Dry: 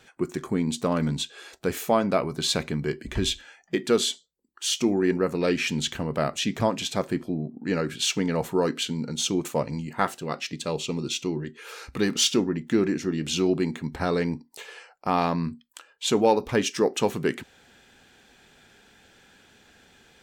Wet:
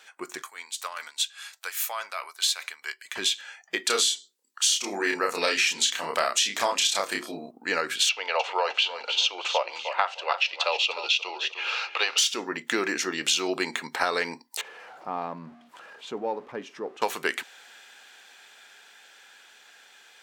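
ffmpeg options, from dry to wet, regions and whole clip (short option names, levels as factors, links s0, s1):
-filter_complex "[0:a]asettb=1/sr,asplit=3[s0][s1][s2];[s0]atrim=end=0.424[s3];[s1]atrim=start=0.42:end=3.16,asetpts=PTS-STARTPTS,afade=t=in:d=0.004:c=qsin,afade=t=out:st=2.736:d=0.004:c=qsin,highpass=1100,highshelf=f=9300:g=8,tremolo=f=4.9:d=0.58[s4];[s2]atrim=start=3.156[s5];[s3][s4]acrossfade=d=0.004:c1=hsin:c2=qsin[s6];[s6][s5]acrossfade=d=0.004:c1=qsin:c2=hsin,asettb=1/sr,asplit=3[s7][s8][s9];[s7]atrim=end=3.864[s10];[s8]atrim=start=3.86:end=7.51,asetpts=PTS-STARTPTS,afade=t=in:d=0.004:c=qsin,afade=t=out:st=3.646:d=0.004:c=qsin,equalizer=f=6600:t=o:w=2.3:g=6.5,bandreject=f=60:t=h:w=6,bandreject=f=120:t=h:w=6,bandreject=f=180:t=h:w=6,bandreject=f=240:t=h:w=6,bandreject=f=300:t=h:w=6,bandreject=f=360:t=h:w=6,bandreject=f=420:t=h:w=6,bandreject=f=480:t=h:w=6,asplit=2[s11][s12];[s12]adelay=30,volume=0.708[s13];[s11][s13]amix=inputs=2:normalize=0,atrim=end_sample=160965[s14];[s9]atrim=start=7.506[s15];[s10][s14]acrossfade=d=0.004:c1=hsin:c2=qsin[s16];[s16][s15]acrossfade=d=0.004:c1=qsin:c2=hsin,asettb=1/sr,asplit=3[s17][s18][s19];[s17]atrim=end=8.094[s20];[s18]atrim=start=8.09:end=12.18,asetpts=PTS-STARTPTS,afade=t=in:d=0.004:c=qsin,afade=t=out:st=4.086:d=0.004:c=qsin,highpass=f=500:w=0.5412,highpass=f=500:w=1.3066,equalizer=f=550:t=q:w=4:g=4,equalizer=f=790:t=q:w=4:g=4,equalizer=f=1800:t=q:w=4:g=-6,equalizer=f=2700:t=q:w=4:g=9,lowpass=f=4800:w=0.5412,lowpass=f=4800:w=1.3066,aecho=1:1:304|608|912:0.224|0.0627|0.0176,atrim=end_sample=180369[s21];[s19]atrim=start=12.176[s22];[s20][s21]acrossfade=d=0.004:c1=hsin:c2=qsin[s23];[s23][s22]acrossfade=d=0.004:c1=qsin:c2=hsin,asettb=1/sr,asplit=3[s24][s25][s26];[s24]atrim=end=14.614[s27];[s25]atrim=start=14.61:end=17.02,asetpts=PTS-STARTPTS,afade=t=in:d=0.004:c=qsin,afade=t=out:st=2.406:d=0.004:c=qsin,aeval=exprs='val(0)+0.5*0.0188*sgn(val(0))':c=same,bandpass=f=130:t=q:w=1,acompressor=mode=upward:threshold=0.00562:ratio=2.5:attack=3.2:release=140:knee=2.83:detection=peak[s28];[s26]atrim=start=17.016[s29];[s27][s28]acrossfade=d=0.004:c1=hsin:c2=qsin[s30];[s30][s29]acrossfade=d=0.004:c1=qsin:c2=hsin,dynaudnorm=f=480:g=17:m=3.76,highpass=850,acompressor=threshold=0.0562:ratio=8,volume=1.68"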